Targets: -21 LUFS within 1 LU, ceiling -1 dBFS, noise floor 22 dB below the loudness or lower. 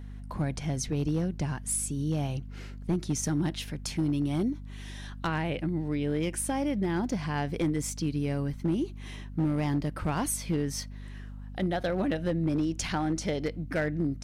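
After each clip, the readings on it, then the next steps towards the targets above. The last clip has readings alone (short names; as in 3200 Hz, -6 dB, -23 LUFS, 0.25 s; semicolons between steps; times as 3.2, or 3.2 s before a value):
clipped 1.4%; flat tops at -21.5 dBFS; hum 50 Hz; harmonics up to 250 Hz; hum level -39 dBFS; loudness -30.5 LUFS; peak -21.5 dBFS; loudness target -21.0 LUFS
-> clip repair -21.5 dBFS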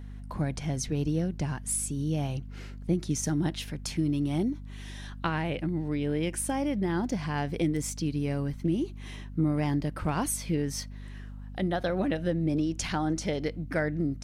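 clipped 0.0%; hum 50 Hz; harmonics up to 250 Hz; hum level -39 dBFS
-> notches 50/100/150/200/250 Hz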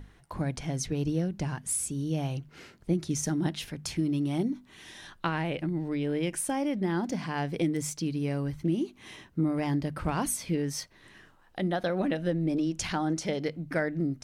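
hum none; loudness -31.0 LUFS; peak -15.0 dBFS; loudness target -21.0 LUFS
-> gain +10 dB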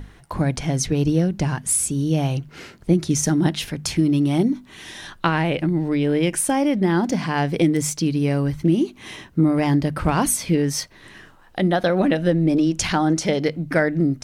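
loudness -21.0 LUFS; peak -5.0 dBFS; noise floor -49 dBFS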